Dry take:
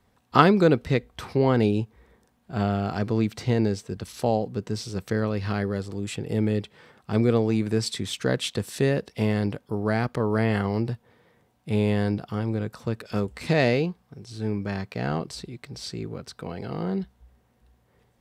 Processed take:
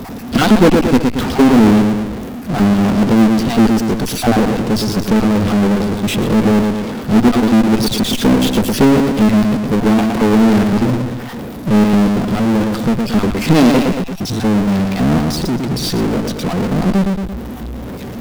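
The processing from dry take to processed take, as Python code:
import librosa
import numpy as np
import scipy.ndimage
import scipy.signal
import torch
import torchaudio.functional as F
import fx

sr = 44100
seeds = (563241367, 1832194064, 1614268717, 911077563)

y = fx.spec_dropout(x, sr, seeds[0], share_pct=29)
y = fx.peak_eq(y, sr, hz=110.0, db=-5.0, octaves=0.23)
y = fx.notch(y, sr, hz=4200.0, q=12.0)
y = fx.cheby_harmonics(y, sr, harmonics=(4, 5, 6, 7), levels_db=(-15, -29, -12, -19), full_scale_db=-8.0)
y = fx.graphic_eq_10(y, sr, hz=(250, 1000, 2000, 8000), db=(11, -5, -7, -11))
y = fx.echo_feedback(y, sr, ms=114, feedback_pct=22, wet_db=-10.5)
y = fx.power_curve(y, sr, exponent=0.35)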